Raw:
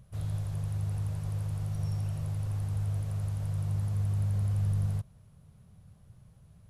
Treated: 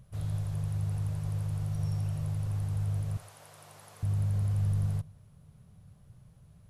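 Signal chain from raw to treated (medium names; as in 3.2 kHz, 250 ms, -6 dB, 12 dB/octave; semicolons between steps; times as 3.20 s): 3.17–4.03 s: high-pass 610 Hz 12 dB/octave; reverberation, pre-delay 7 ms, DRR 19 dB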